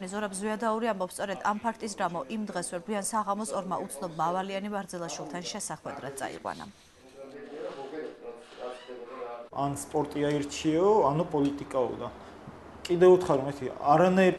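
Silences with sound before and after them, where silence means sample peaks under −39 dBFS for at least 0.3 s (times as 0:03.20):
0:06.69–0:07.19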